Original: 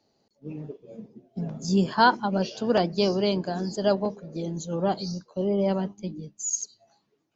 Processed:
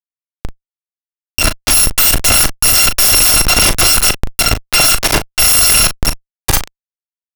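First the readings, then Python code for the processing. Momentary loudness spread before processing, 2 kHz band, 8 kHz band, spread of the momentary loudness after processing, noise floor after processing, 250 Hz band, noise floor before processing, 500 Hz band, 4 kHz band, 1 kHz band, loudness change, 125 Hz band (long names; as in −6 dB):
19 LU, +17.5 dB, can't be measured, 9 LU, below −85 dBFS, +0.5 dB, −73 dBFS, +1.0 dB, +23.0 dB, +6.5 dB, +17.0 dB, +9.5 dB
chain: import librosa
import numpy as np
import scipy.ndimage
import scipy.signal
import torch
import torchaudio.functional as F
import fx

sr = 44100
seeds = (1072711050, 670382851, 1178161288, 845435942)

y = fx.bit_reversed(x, sr, seeds[0], block=256)
y = fx.high_shelf(y, sr, hz=2500.0, db=9.0)
y = np.maximum(y, 0.0)
y = fx.cheby_harmonics(y, sr, harmonics=(2, 4, 5, 6), levels_db=(-44, -33, -7, -26), full_scale_db=2.0)
y = fx.schmitt(y, sr, flips_db=-17.5)
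y = fx.doubler(y, sr, ms=38.0, db=-10.0)
y = F.gain(torch.from_numpy(y), 6.5).numpy()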